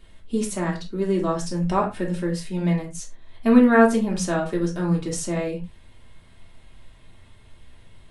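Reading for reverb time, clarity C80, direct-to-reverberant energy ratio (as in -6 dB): not exponential, 17.5 dB, -2.5 dB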